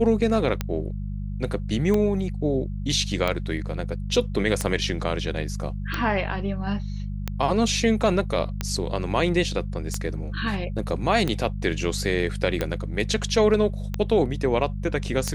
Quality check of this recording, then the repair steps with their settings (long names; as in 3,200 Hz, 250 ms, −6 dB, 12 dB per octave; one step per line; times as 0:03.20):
mains hum 50 Hz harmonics 4 −30 dBFS
scratch tick 45 rpm −11 dBFS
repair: click removal
hum removal 50 Hz, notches 4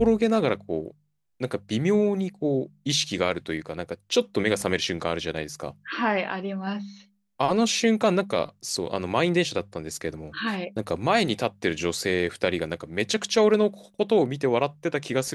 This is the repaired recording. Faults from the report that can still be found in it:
none of them is left